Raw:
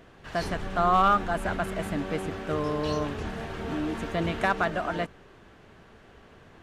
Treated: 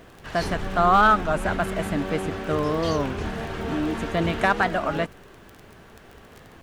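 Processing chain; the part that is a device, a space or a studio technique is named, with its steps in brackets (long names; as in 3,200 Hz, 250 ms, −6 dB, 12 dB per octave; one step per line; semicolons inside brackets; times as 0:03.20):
warped LP (wow of a warped record 33 1/3 rpm, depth 160 cents; surface crackle 22 per second −37 dBFS; pink noise bed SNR 37 dB)
level +4.5 dB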